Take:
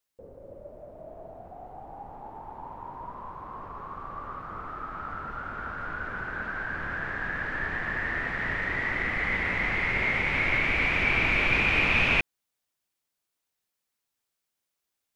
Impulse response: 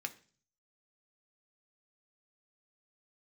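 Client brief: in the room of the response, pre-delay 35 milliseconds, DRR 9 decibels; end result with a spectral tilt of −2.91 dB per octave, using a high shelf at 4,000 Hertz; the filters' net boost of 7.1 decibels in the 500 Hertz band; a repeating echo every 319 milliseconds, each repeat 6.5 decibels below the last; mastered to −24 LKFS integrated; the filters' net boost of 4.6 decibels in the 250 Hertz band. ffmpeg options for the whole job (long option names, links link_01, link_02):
-filter_complex "[0:a]equalizer=frequency=250:width_type=o:gain=3.5,equalizer=frequency=500:width_type=o:gain=8,highshelf=frequency=4000:gain=-3.5,aecho=1:1:319|638|957|1276|1595|1914:0.473|0.222|0.105|0.0491|0.0231|0.0109,asplit=2[link_01][link_02];[1:a]atrim=start_sample=2205,adelay=35[link_03];[link_02][link_03]afir=irnorm=-1:irlink=0,volume=-9dB[link_04];[link_01][link_04]amix=inputs=2:normalize=0,volume=1.5dB"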